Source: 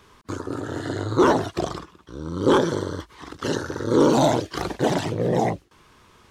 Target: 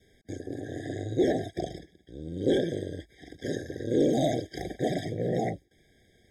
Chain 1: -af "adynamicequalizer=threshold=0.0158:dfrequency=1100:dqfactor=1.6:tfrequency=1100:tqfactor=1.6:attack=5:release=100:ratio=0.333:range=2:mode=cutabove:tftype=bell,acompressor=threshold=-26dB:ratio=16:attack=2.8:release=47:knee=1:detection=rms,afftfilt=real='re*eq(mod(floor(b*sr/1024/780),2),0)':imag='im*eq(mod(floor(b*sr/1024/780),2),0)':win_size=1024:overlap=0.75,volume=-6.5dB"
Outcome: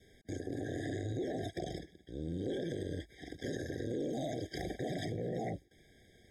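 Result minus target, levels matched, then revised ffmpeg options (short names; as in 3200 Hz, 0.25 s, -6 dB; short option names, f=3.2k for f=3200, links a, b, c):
compressor: peak gain reduction +14.5 dB
-af "adynamicequalizer=threshold=0.0158:dfrequency=1100:dqfactor=1.6:tfrequency=1100:tqfactor=1.6:attack=5:release=100:ratio=0.333:range=2:mode=cutabove:tftype=bell,afftfilt=real='re*eq(mod(floor(b*sr/1024/780),2),0)':imag='im*eq(mod(floor(b*sr/1024/780),2),0)':win_size=1024:overlap=0.75,volume=-6.5dB"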